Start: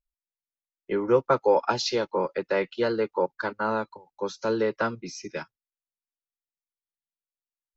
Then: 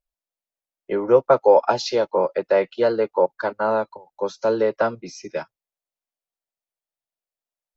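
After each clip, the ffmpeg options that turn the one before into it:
-af "equalizer=f=640:t=o:w=0.89:g=11"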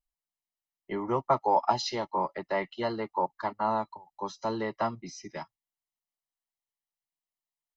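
-af "aecho=1:1:1:0.78,volume=-7dB"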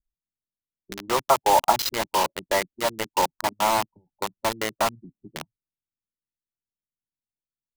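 -filter_complex "[0:a]acrossover=split=350[a][b];[a]acompressor=threshold=-46dB:ratio=10[c];[b]acrusher=bits=4:mix=0:aa=0.000001[d];[c][d]amix=inputs=2:normalize=0,volume=6dB"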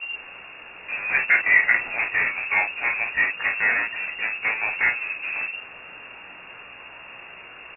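-af "aeval=exprs='val(0)+0.5*0.0708*sgn(val(0))':c=same,lowpass=f=2.4k:t=q:w=0.5098,lowpass=f=2.4k:t=q:w=0.6013,lowpass=f=2.4k:t=q:w=0.9,lowpass=f=2.4k:t=q:w=2.563,afreqshift=-2800,aecho=1:1:17|33|51:0.668|0.473|0.531,volume=-3.5dB"

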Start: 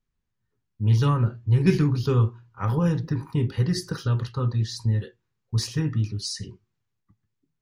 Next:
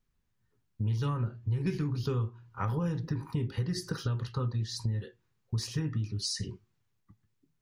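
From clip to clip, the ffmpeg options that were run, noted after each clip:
-af "acompressor=threshold=-33dB:ratio=4,volume=2.5dB"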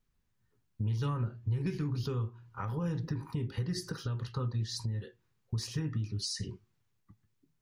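-af "alimiter=level_in=0.5dB:limit=-24dB:level=0:latency=1:release=407,volume=-0.5dB"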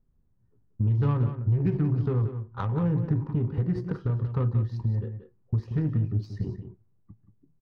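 -filter_complex "[0:a]asplit=2[a][b];[b]asoftclip=type=tanh:threshold=-39.5dB,volume=-11.5dB[c];[a][c]amix=inputs=2:normalize=0,adynamicsmooth=sensitivity=2:basefreq=660,aecho=1:1:181:0.316,volume=7.5dB"

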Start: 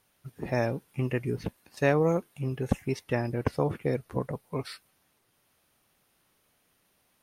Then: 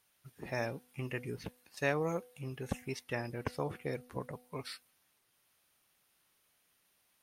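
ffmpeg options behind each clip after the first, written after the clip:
-af "tiltshelf=f=970:g=-4.5,bandreject=f=247.9:t=h:w=4,bandreject=f=495.8:t=h:w=4,bandreject=f=743.7:t=h:w=4,volume=-6.5dB"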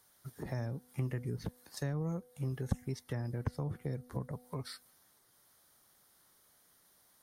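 -filter_complex "[0:a]equalizer=f=2.6k:t=o:w=0.49:g=-15,acrossover=split=190[a][b];[b]acompressor=threshold=-49dB:ratio=10[c];[a][c]amix=inputs=2:normalize=0,volume=7.5dB"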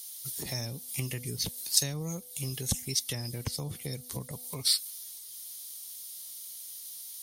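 -af "aexciter=amount=5.2:drive=9.7:freq=2.4k"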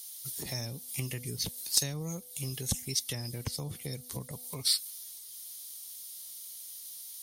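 -af "aeval=exprs='clip(val(0),-1,0.237)':c=same,volume=-1.5dB"

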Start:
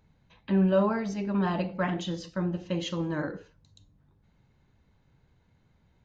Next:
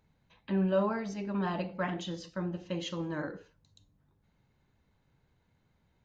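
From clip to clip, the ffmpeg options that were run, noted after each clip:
-af "lowshelf=f=220:g=-4,volume=-3.5dB"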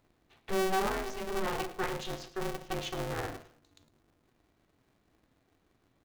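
-af "volume=25dB,asoftclip=hard,volume=-25dB,aecho=1:1:107|214|321:0.158|0.0507|0.0162,aeval=exprs='val(0)*sgn(sin(2*PI*190*n/s))':c=same"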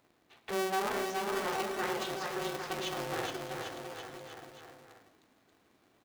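-filter_complex "[0:a]highpass=f=290:p=1,asplit=2[a][b];[b]acompressor=threshold=-44dB:ratio=6,volume=1.5dB[c];[a][c]amix=inputs=2:normalize=0,aecho=1:1:420|798|1138|1444|1720:0.631|0.398|0.251|0.158|0.1,volume=-3dB"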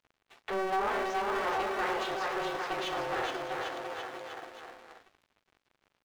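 -filter_complex "[0:a]asplit=2[a][b];[b]highpass=f=720:p=1,volume=17dB,asoftclip=type=tanh:threshold=-20dB[c];[a][c]amix=inputs=2:normalize=0,lowpass=f=1.6k:p=1,volume=-6dB,equalizer=f=160:w=0.84:g=-5.5,aeval=exprs='sgn(val(0))*max(abs(val(0))-0.00141,0)':c=same"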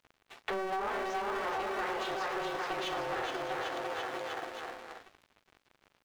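-af "acompressor=threshold=-38dB:ratio=6,volume=5.5dB"

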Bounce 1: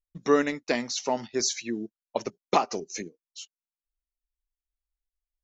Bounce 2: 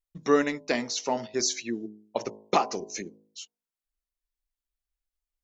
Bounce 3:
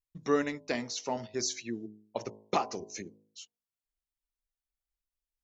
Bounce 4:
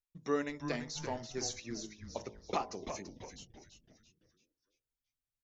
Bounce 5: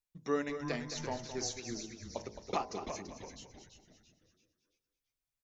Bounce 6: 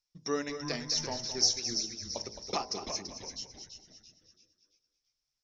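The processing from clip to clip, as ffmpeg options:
-af "bandreject=f=53.16:t=h:w=4,bandreject=f=106.32:t=h:w=4,bandreject=f=159.48:t=h:w=4,bandreject=f=212.64:t=h:w=4,bandreject=f=265.8:t=h:w=4,bandreject=f=318.96:t=h:w=4,bandreject=f=372.12:t=h:w=4,bandreject=f=425.28:t=h:w=4,bandreject=f=478.44:t=h:w=4,bandreject=f=531.6:t=h:w=4,bandreject=f=584.76:t=h:w=4,bandreject=f=637.92:t=h:w=4,bandreject=f=691.08:t=h:w=4,bandreject=f=744.24:t=h:w=4,bandreject=f=797.4:t=h:w=4,bandreject=f=850.56:t=h:w=4,bandreject=f=903.72:t=h:w=4,bandreject=f=956.88:t=h:w=4,bandreject=f=1.01004k:t=h:w=4,bandreject=f=1.0632k:t=h:w=4"
-af "equalizer=f=93:w=1.6:g=12,volume=-6dB"
-filter_complex "[0:a]asplit=6[a][b][c][d][e][f];[b]adelay=336,afreqshift=-140,volume=-8dB[g];[c]adelay=672,afreqshift=-280,volume=-15.7dB[h];[d]adelay=1008,afreqshift=-420,volume=-23.5dB[i];[e]adelay=1344,afreqshift=-560,volume=-31.2dB[j];[f]adelay=1680,afreqshift=-700,volume=-39dB[k];[a][g][h][i][j][k]amix=inputs=6:normalize=0,volume=-5.5dB"
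-af "aecho=1:1:216|432|648:0.299|0.0746|0.0187"
-af "lowpass=f=5.4k:t=q:w=8.7"

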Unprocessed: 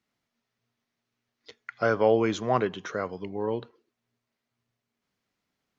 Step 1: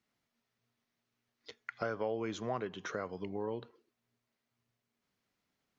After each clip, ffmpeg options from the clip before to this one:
-af "acompressor=threshold=-34dB:ratio=3,volume=-2dB"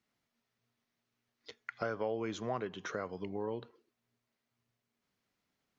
-af anull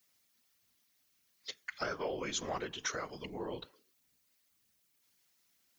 -af "crystalizer=i=8:c=0,afftfilt=real='hypot(re,im)*cos(2*PI*random(0))':imag='hypot(re,im)*sin(2*PI*random(1))':win_size=512:overlap=0.75,volume=2dB"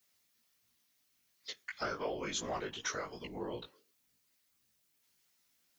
-af "flanger=delay=16.5:depth=4.5:speed=2.8,volume=2.5dB"

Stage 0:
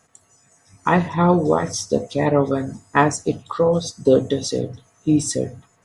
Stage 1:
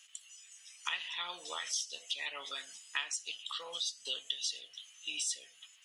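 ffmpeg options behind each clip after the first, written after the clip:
-af "highpass=f=3k:t=q:w=8.2,acompressor=threshold=-37dB:ratio=3"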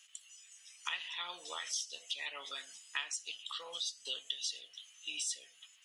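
-af "lowshelf=f=78:g=-11,volume=-2dB"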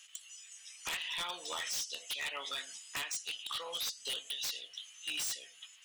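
-af "aeval=exprs='0.0158*(abs(mod(val(0)/0.0158+3,4)-2)-1)':c=same,volume=5dB"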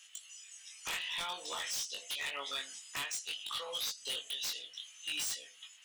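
-af "flanger=delay=19.5:depth=3:speed=0.54,volume=3dB"

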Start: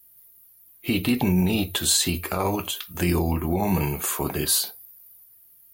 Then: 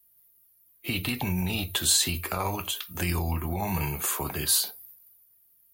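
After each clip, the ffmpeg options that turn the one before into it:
-filter_complex "[0:a]agate=range=-7dB:threshold=-48dB:ratio=16:detection=peak,acrossover=split=140|720|2800[a][b][c][d];[b]acompressor=threshold=-34dB:ratio=6[e];[a][e][c][d]amix=inputs=4:normalize=0,volume=-1.5dB"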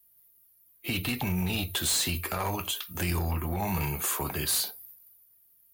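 -af "volume=24dB,asoftclip=hard,volume=-24dB"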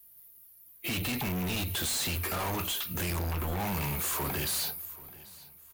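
-af "asoftclip=type=hard:threshold=-37dB,aecho=1:1:786|1572|2358:0.0891|0.0303|0.0103,volume=6.5dB"

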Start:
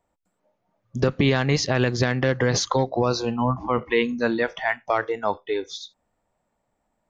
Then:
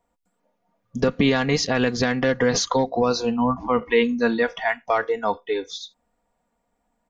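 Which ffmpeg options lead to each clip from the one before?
-af "aecho=1:1:4.2:0.55"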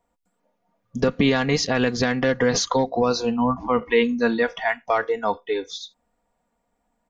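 -af anull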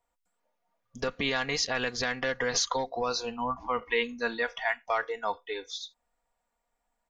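-af "equalizer=f=190:w=0.44:g=-14,volume=-3.5dB"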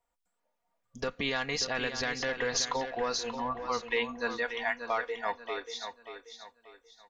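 -af "aecho=1:1:584|1168|1752|2336:0.355|0.121|0.041|0.0139,volume=-2.5dB"

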